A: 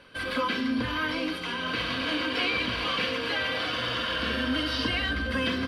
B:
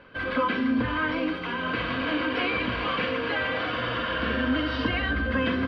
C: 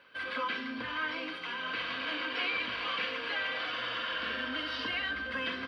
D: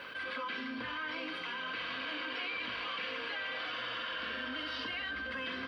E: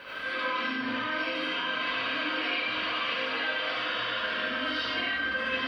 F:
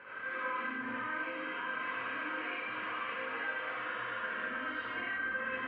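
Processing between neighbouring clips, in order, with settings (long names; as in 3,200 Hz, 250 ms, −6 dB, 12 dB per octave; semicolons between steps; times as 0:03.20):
low-pass filter 2,100 Hz 12 dB per octave; level +3.5 dB
spectral tilt +4 dB per octave; level −8.5 dB
envelope flattener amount 70%; level −6.5 dB
convolution reverb RT60 0.80 s, pre-delay 35 ms, DRR −8 dB
loudspeaker in its box 100–2,100 Hz, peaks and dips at 170 Hz −4 dB, 280 Hz −6 dB, 640 Hz −8 dB; level −4.5 dB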